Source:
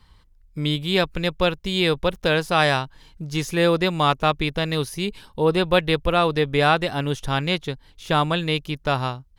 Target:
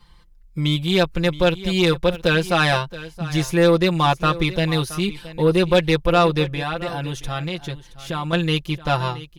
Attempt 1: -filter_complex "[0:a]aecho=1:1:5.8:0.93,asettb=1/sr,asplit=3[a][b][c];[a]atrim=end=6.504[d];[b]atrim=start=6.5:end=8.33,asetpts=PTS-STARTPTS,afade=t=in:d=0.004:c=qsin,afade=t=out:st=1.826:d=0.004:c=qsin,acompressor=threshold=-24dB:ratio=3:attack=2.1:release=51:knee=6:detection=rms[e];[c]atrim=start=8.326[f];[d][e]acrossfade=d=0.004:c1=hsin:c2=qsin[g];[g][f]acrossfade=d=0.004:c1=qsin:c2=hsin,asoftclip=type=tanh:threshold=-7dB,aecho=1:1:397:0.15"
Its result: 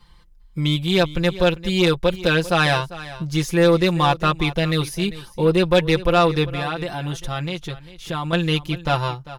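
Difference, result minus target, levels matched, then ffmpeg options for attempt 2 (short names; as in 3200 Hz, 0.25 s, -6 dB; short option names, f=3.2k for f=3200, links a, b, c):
echo 0.276 s early
-filter_complex "[0:a]aecho=1:1:5.8:0.93,asettb=1/sr,asplit=3[a][b][c];[a]atrim=end=6.504[d];[b]atrim=start=6.5:end=8.33,asetpts=PTS-STARTPTS,afade=t=in:d=0.004:c=qsin,afade=t=out:st=1.826:d=0.004:c=qsin,acompressor=threshold=-24dB:ratio=3:attack=2.1:release=51:knee=6:detection=rms[e];[c]atrim=start=8.326[f];[d][e]acrossfade=d=0.004:c1=hsin:c2=qsin[g];[g][f]acrossfade=d=0.004:c1=qsin:c2=hsin,asoftclip=type=tanh:threshold=-7dB,aecho=1:1:673:0.15"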